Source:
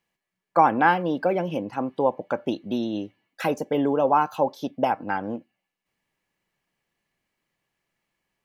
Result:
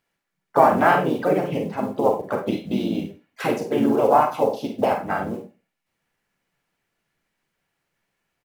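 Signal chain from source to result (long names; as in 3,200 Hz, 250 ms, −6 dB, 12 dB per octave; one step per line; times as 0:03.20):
floating-point word with a short mantissa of 4 bits
four-comb reverb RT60 0.31 s, combs from 32 ms, DRR 3.5 dB
pitch-shifted copies added −4 semitones −4 dB, −3 semitones −5 dB, +4 semitones −16 dB
level −1 dB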